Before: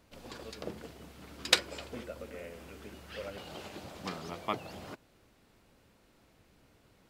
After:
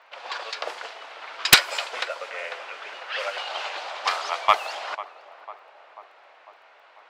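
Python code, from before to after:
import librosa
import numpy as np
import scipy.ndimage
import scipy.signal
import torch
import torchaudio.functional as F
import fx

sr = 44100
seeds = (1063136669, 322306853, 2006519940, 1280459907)

y = fx.env_lowpass(x, sr, base_hz=2400.0, full_db=-33.0)
y = scipy.signal.sosfilt(scipy.signal.butter(4, 730.0, 'highpass', fs=sr, output='sos'), y)
y = fx.high_shelf(y, sr, hz=8900.0, db=-10.0)
y = fx.echo_tape(y, sr, ms=496, feedback_pct=75, wet_db=-14.0, lp_hz=1100.0, drive_db=5.0, wow_cents=39)
y = fx.fold_sine(y, sr, drive_db=11, ceiling_db=-6.5)
y = fx.dmg_crackle(y, sr, seeds[0], per_s=14.0, level_db=-59.0)
y = y * 10.0 ** (3.5 / 20.0)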